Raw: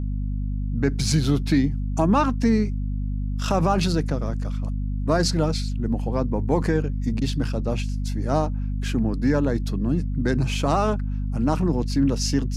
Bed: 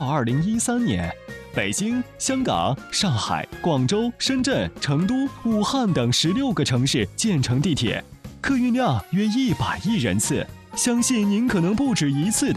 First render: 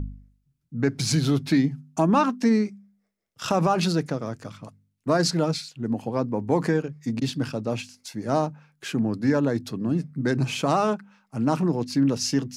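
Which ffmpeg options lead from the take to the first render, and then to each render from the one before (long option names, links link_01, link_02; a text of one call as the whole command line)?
ffmpeg -i in.wav -af "bandreject=frequency=50:width_type=h:width=4,bandreject=frequency=100:width_type=h:width=4,bandreject=frequency=150:width_type=h:width=4,bandreject=frequency=200:width_type=h:width=4,bandreject=frequency=250:width_type=h:width=4" out.wav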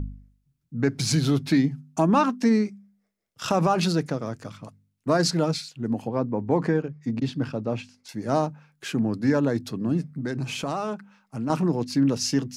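ffmpeg -i in.wav -filter_complex "[0:a]asettb=1/sr,asplit=3[link_01][link_02][link_03];[link_01]atrim=end=6.074[link_04];[link_02]atrim=start=6.07:end=8.09,asetpts=PTS-STARTPTS,afade=type=in:duration=0.004:curve=qsin,afade=type=out:start_time=2.016:duration=0.004:curve=qsin,aemphasis=mode=reproduction:type=75kf[link_05];[link_03]atrim=start=8.086[link_06];[link_04][link_05]acrossfade=duration=0.004:curve1=hsin:curve2=qsin[link_07];[link_07][link_06]acrossfade=duration=0.004:curve1=qsin:curve2=hsin,asettb=1/sr,asplit=3[link_08][link_09][link_10];[link_08]atrim=end=10.074[link_11];[link_09]atrim=start=10.07:end=11.5,asetpts=PTS-STARTPTS,afade=type=in:duration=0.004:curve=qsin,afade=type=out:start_time=1.426:duration=0.004:curve=qsin,acompressor=threshold=-29dB:ratio=2:attack=3.2:release=140:knee=1:detection=peak[link_12];[link_10]atrim=start=11.496[link_13];[link_11][link_12]acrossfade=duration=0.004:curve1=hsin:curve2=qsin[link_14];[link_14][link_13]acrossfade=duration=0.004:curve1=qsin:curve2=hsin" out.wav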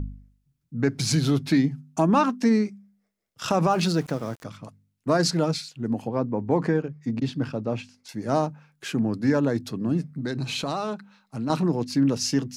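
ffmpeg -i in.wav -filter_complex "[0:a]asettb=1/sr,asplit=3[link_01][link_02][link_03];[link_01]atrim=end=3.714[link_04];[link_02]atrim=start=3.71:end=4.44,asetpts=PTS-STARTPTS,afade=type=in:duration=0.004:curve=qsin,afade=type=out:start_time=0.726:duration=0.004:curve=qsin,aeval=exprs='val(0)*gte(abs(val(0)),0.00794)':channel_layout=same[link_05];[link_03]atrim=start=4.436[link_06];[link_04][link_05]acrossfade=duration=0.004:curve1=hsin:curve2=qsin[link_07];[link_07][link_06]acrossfade=duration=0.004:curve1=qsin:curve2=hsin,asettb=1/sr,asplit=3[link_08][link_09][link_10];[link_08]atrim=end=10.174[link_11];[link_09]atrim=start=10.17:end=11.63,asetpts=PTS-STARTPTS,afade=type=in:duration=0.004:curve=qsin,afade=type=out:start_time=1.456:duration=0.004:curve=qsin,equalizer=frequency=4000:width=6.2:gain=14[link_12];[link_10]atrim=start=11.626[link_13];[link_11][link_12]acrossfade=duration=0.004:curve1=hsin:curve2=qsin[link_14];[link_14][link_13]acrossfade=duration=0.004:curve1=qsin:curve2=hsin" out.wav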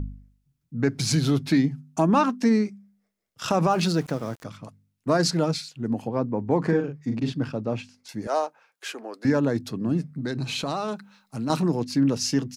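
ffmpeg -i in.wav -filter_complex "[0:a]asplit=3[link_01][link_02][link_03];[link_01]afade=type=out:start_time=6.65:duration=0.02[link_04];[link_02]asplit=2[link_05][link_06];[link_06]adelay=42,volume=-5.5dB[link_07];[link_05][link_07]amix=inputs=2:normalize=0,afade=type=in:start_time=6.65:duration=0.02,afade=type=out:start_time=7.32:duration=0.02[link_08];[link_03]afade=type=in:start_time=7.32:duration=0.02[link_09];[link_04][link_08][link_09]amix=inputs=3:normalize=0,asettb=1/sr,asplit=3[link_10][link_11][link_12];[link_10]atrim=end=8.274[link_13];[link_11]atrim=start=8.27:end=9.25,asetpts=PTS-STARTPTS,afade=type=in:duration=0.004:curve=qsin,afade=type=out:start_time=0.976:duration=0.004:curve=qsin,highpass=frequency=440:width=0.5412,highpass=frequency=440:width=1.3066[link_14];[link_12]atrim=start=9.246[link_15];[link_13][link_14]acrossfade=duration=0.004:curve1=hsin:curve2=qsin[link_16];[link_16][link_15]acrossfade=duration=0.004:curve1=qsin:curve2=hsin,asettb=1/sr,asplit=3[link_17][link_18][link_19];[link_17]atrim=end=10.884[link_20];[link_18]atrim=start=10.88:end=11.8,asetpts=PTS-STARTPTS,afade=type=in:duration=0.004:curve=qsin,afade=type=out:start_time=0.916:duration=0.004:curve=qsin,highshelf=frequency=5700:gain=8.5[link_21];[link_19]atrim=start=11.796[link_22];[link_20][link_21]acrossfade=duration=0.004:curve1=hsin:curve2=qsin[link_23];[link_23][link_22]acrossfade=duration=0.004:curve1=qsin:curve2=hsin" out.wav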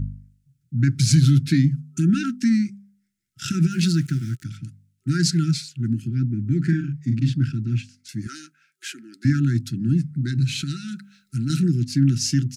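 ffmpeg -i in.wav -af "afftfilt=real='re*(1-between(b*sr/4096,380,1300))':imag='im*(1-between(b*sr/4096,380,1300))':win_size=4096:overlap=0.75,equalizer=frequency=125:width_type=o:width=1:gain=12,equalizer=frequency=500:width_type=o:width=1:gain=-9,equalizer=frequency=8000:width_type=o:width=1:gain=5" out.wav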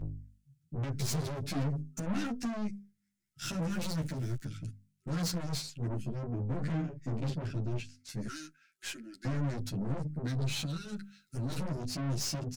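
ffmpeg -i in.wav -filter_complex "[0:a]aeval=exprs='(tanh(28.2*val(0)+0.5)-tanh(0.5))/28.2':channel_layout=same,asplit=2[link_01][link_02];[link_02]adelay=11.1,afreqshift=1.8[link_03];[link_01][link_03]amix=inputs=2:normalize=1" out.wav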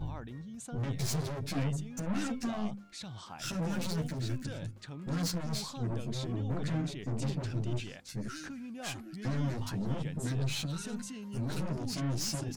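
ffmpeg -i in.wav -i bed.wav -filter_complex "[1:a]volume=-23dB[link_01];[0:a][link_01]amix=inputs=2:normalize=0" out.wav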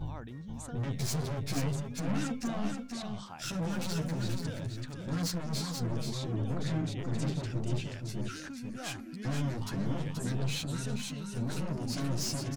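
ffmpeg -i in.wav -af "aecho=1:1:480:0.531" out.wav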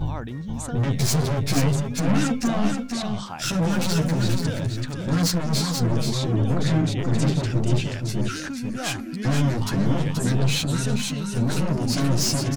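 ffmpeg -i in.wav -af "volume=11.5dB" out.wav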